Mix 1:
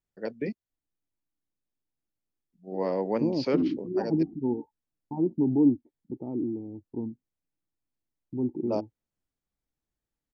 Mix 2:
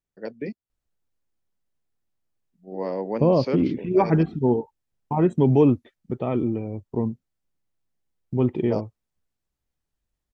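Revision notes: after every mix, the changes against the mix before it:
second voice: remove cascade formant filter u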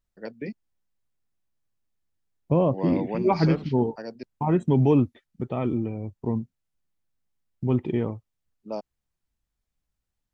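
second voice: entry -0.70 s; master: add peaking EQ 440 Hz -4 dB 1.5 oct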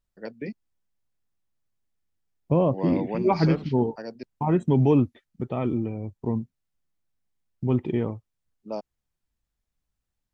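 no change

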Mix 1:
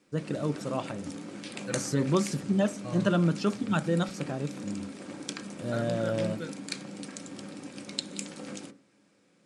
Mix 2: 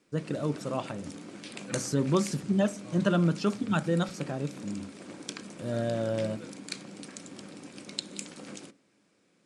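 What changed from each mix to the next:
second voice -10.0 dB; background: send -9.0 dB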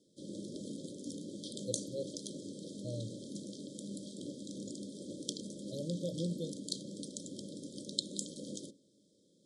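first voice: muted; second voice +9.0 dB; master: add brick-wall FIR band-stop 630–3100 Hz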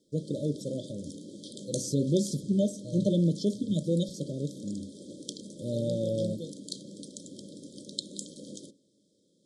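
first voice: unmuted

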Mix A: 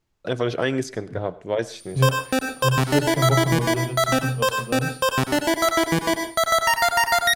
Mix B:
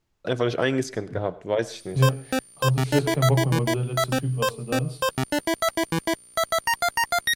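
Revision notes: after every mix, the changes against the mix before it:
background: send off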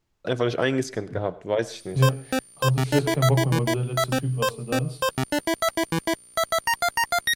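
no change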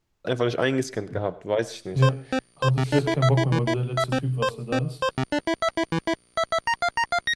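background: add distance through air 100 m

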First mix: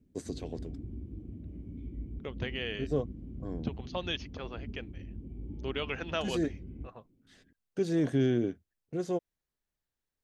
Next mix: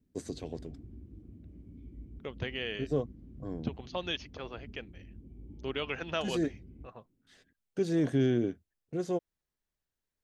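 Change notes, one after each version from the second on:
background -7.0 dB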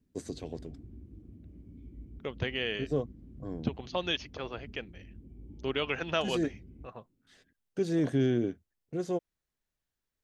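second voice +3.5 dB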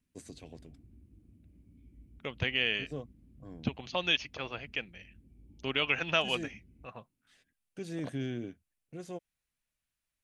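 first voice -7.5 dB; background -8.5 dB; master: add fifteen-band graphic EQ 400 Hz -5 dB, 2.5 kHz +7 dB, 10 kHz +9 dB

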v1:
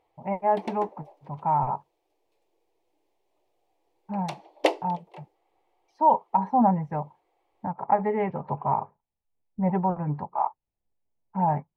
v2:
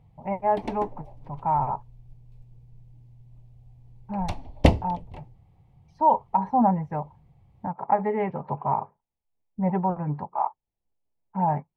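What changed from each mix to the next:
background: remove brick-wall FIR high-pass 300 Hz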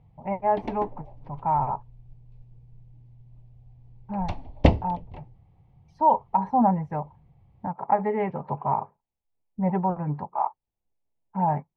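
background: add distance through air 140 m

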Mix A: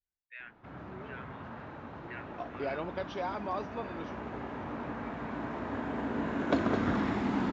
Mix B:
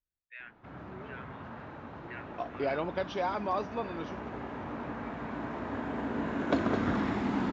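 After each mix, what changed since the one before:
second voice +4.0 dB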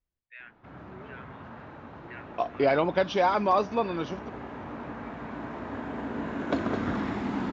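second voice +8.5 dB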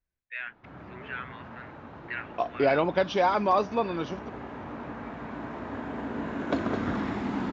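first voice +10.5 dB

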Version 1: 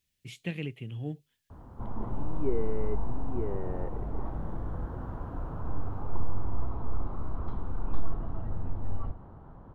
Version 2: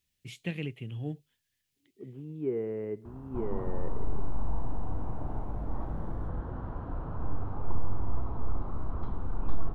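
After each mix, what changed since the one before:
background: entry +1.55 s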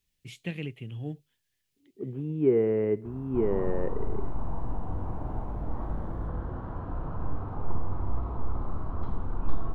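second voice +9.0 dB; background: send +11.0 dB

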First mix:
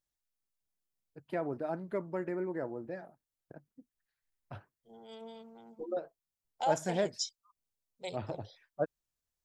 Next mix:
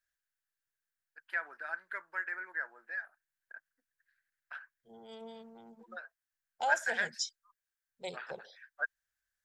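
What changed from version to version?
first voice: add resonant high-pass 1.6 kHz, resonance Q 7.7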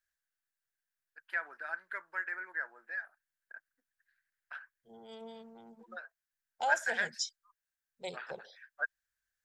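no change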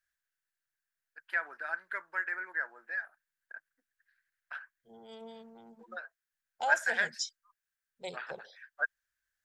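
first voice +3.0 dB

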